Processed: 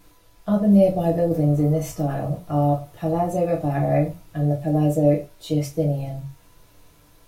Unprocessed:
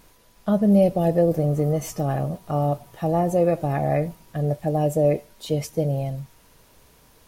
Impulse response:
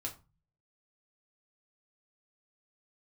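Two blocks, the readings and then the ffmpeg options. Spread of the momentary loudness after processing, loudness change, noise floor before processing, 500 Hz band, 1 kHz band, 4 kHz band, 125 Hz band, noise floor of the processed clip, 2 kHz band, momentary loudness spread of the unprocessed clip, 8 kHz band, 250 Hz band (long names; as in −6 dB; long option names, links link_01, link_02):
10 LU, +1.0 dB, −56 dBFS, −0.5 dB, 0.0 dB, can't be measured, +2.0 dB, −54 dBFS, −0.5 dB, 10 LU, −1.5 dB, +2.5 dB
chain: -filter_complex "[1:a]atrim=start_sample=2205,afade=type=out:start_time=0.16:duration=0.01,atrim=end_sample=7497[link_01];[0:a][link_01]afir=irnorm=-1:irlink=0"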